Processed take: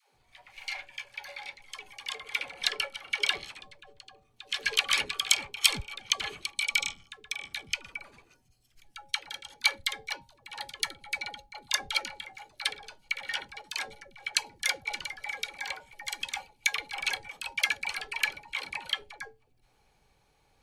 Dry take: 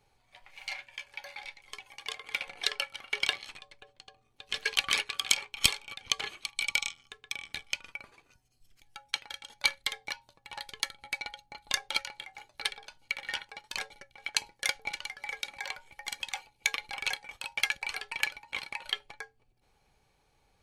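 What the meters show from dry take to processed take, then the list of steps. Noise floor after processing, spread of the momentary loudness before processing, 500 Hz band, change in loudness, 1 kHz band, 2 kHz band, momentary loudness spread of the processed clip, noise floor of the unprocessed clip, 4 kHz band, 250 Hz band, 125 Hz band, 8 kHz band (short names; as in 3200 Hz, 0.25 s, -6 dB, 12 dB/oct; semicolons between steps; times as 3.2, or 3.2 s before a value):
-68 dBFS, 16 LU, +2.0 dB, +2.0 dB, +2.0 dB, +2.0 dB, 16 LU, -71 dBFS, +2.0 dB, +2.0 dB, +2.0 dB, +2.0 dB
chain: dispersion lows, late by 0.149 s, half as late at 370 Hz; gain +2 dB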